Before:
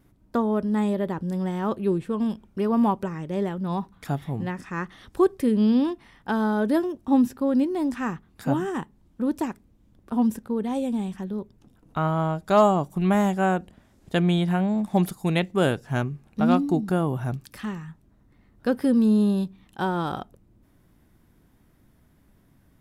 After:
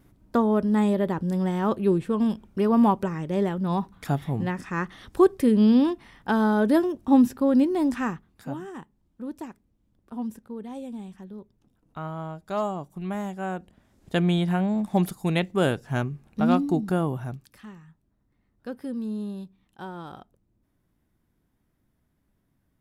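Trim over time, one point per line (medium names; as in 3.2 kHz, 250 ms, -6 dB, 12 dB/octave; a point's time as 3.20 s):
7.99 s +2 dB
8.51 s -10 dB
13.36 s -10 dB
14.15 s -1 dB
17.05 s -1 dB
17.62 s -12 dB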